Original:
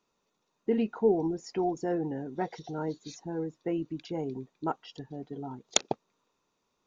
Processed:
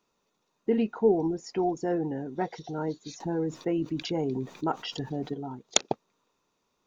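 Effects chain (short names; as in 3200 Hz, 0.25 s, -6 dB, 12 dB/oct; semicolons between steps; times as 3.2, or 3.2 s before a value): 3.2–5.34 fast leveller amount 50%; gain +2 dB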